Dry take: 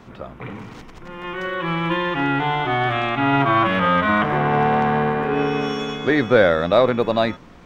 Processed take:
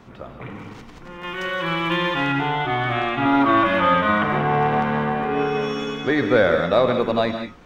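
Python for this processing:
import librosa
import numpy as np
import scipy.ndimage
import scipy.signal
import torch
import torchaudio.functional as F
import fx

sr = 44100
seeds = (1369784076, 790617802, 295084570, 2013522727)

y = fx.high_shelf(x, sr, hz=2800.0, db=10.5, at=(1.23, 2.32))
y = fx.comb(y, sr, ms=3.4, depth=0.79, at=(3.25, 3.94))
y = fx.rev_gated(y, sr, seeds[0], gate_ms=210, shape='rising', drr_db=6.0)
y = y * librosa.db_to_amplitude(-2.5)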